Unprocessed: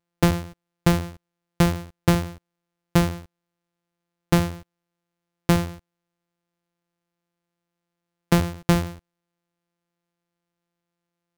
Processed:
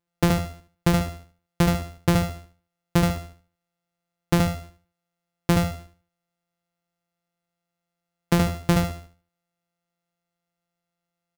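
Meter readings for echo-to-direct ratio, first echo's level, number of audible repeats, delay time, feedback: −2.5 dB, −3.0 dB, 3, 74 ms, 26%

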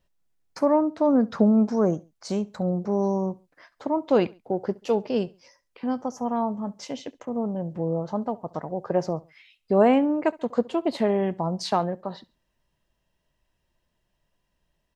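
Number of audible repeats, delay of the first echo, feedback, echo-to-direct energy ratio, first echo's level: 2, 68 ms, 34%, −22.0 dB, −22.5 dB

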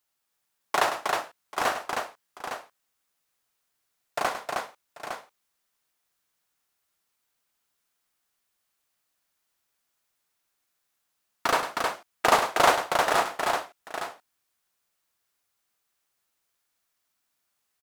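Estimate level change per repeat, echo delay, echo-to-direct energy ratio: repeats not evenly spaced, 102 ms, −1.5 dB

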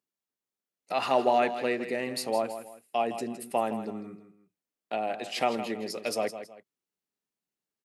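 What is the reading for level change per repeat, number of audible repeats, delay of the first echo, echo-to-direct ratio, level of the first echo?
−10.0 dB, 2, 162 ms, −10.5 dB, −11.0 dB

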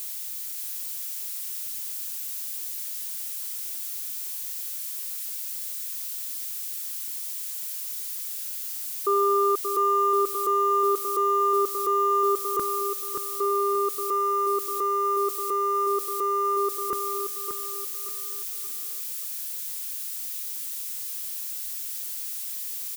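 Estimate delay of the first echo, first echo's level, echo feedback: 579 ms, −6.5 dB, 35%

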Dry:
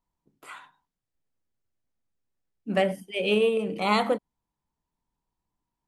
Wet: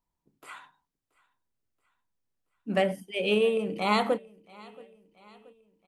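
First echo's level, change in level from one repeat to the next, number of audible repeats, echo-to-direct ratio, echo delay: −24.0 dB, −5.5 dB, 2, −22.5 dB, 678 ms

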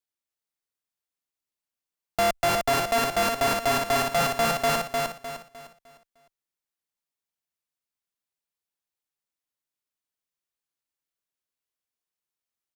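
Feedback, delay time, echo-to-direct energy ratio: 35%, 304 ms, −3.0 dB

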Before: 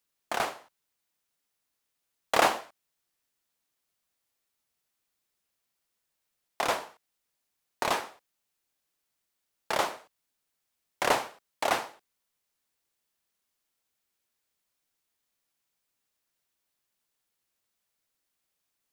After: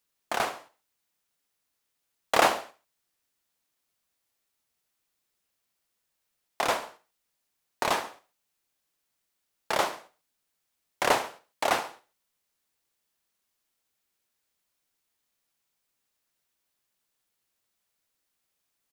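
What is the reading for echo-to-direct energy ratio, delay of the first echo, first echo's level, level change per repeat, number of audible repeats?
−16.0 dB, 69 ms, −17.0 dB, −6.0 dB, 2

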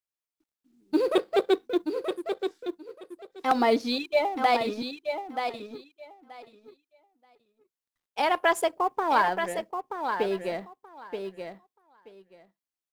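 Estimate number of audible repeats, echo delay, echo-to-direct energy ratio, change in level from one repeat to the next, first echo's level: 2, 929 ms, −7.0 dB, −16.0 dB, −7.0 dB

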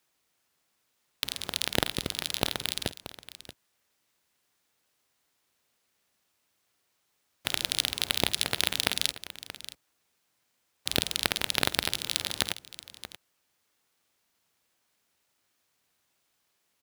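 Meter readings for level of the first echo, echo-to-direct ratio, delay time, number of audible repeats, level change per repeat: −18.0 dB, −13.0 dB, 50 ms, 2, repeats not evenly spaced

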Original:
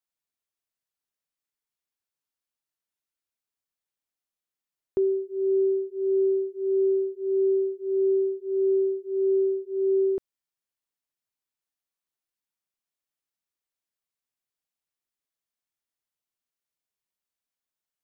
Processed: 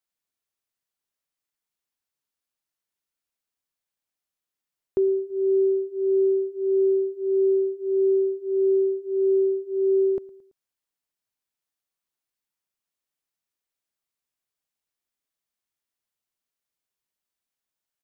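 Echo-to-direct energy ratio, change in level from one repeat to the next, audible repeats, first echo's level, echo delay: −21.0 dB, −6.0 dB, 3, −22.0 dB, 111 ms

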